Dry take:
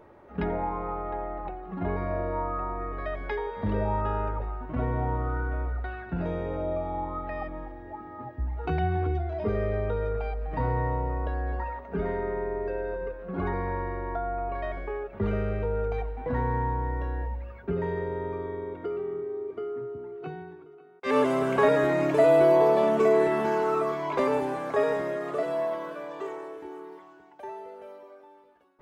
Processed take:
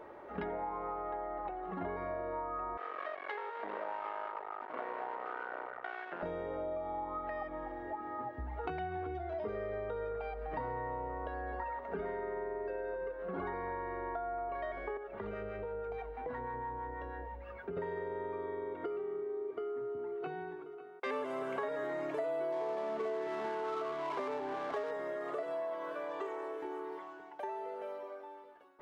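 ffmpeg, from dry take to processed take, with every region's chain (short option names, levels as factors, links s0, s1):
-filter_complex "[0:a]asettb=1/sr,asplit=3[s0][s1][s2];[s0]atrim=end=2.774[s3];[s1]atrim=start=2.77:end=6.23,asetpts=PTS-STARTPTS,afade=t=in:d=0.004:c=qsin,afade=t=out:st=3.456:d=0.004:c=qsin,aeval=exprs='max(val(0),0)':c=same,highpass=490,lowpass=2800[s4];[s2]atrim=start=6.226[s5];[s3][s4]acrossfade=d=0.004:c1=hsin:c2=qsin[s6];[s6][s5]acrossfade=d=0.004:c1=qsin:c2=hsin,asettb=1/sr,asplit=3[s7][s8][s9];[s7]atrim=end=14.974[s10];[s8]atrim=start=14.97:end=17.77,asetpts=PTS-STARTPTS,afade=t=in:d=0.004:c=qsin,afade=t=out:st=2.796:d=0.004:c=qsin,acrossover=split=770[s11][s12];[s11]aeval=exprs='val(0)*(1-0.5/2+0.5/2*cos(2*PI*6.2*n/s))':c=same[s13];[s12]aeval=exprs='val(0)*(1-0.5/2-0.5/2*cos(2*PI*6.2*n/s))':c=same[s14];[s13][s14]amix=inputs=2:normalize=0,acompressor=threshold=0.01:ratio=2:attack=3.2:release=140:knee=1:detection=peak[s15];[s9]atrim=start=17.766[s16];[s10][s15]acrossfade=d=0.004:c1=hsin:c2=qsin[s17];[s17][s16]acrossfade=d=0.004:c1=qsin:c2=hsin,asettb=1/sr,asplit=3[s18][s19][s20];[s18]atrim=end=22.524[s21];[s19]atrim=start=22.52:end=24.91,asetpts=PTS-STARTPTS,afade=t=in:d=0.004:c=qsin,afade=t=out:st=2.386:d=0.004:c=qsin,aeval=exprs='val(0)+0.5*0.0178*sgn(val(0))':c=same,bandreject=f=530:w=7.1,adynamicsmooth=sensitivity=5:basefreq=770[s22];[s20]atrim=start=24.906[s23];[s21][s22]acrossfade=d=0.004:c1=hsin:c2=qsin[s24];[s24][s23]acrossfade=d=0.004:c1=qsin:c2=hsin,bass=f=250:g=-13,treble=f=4000:g=-6,bandreject=f=2500:w=24,acompressor=threshold=0.00891:ratio=5,volume=1.58"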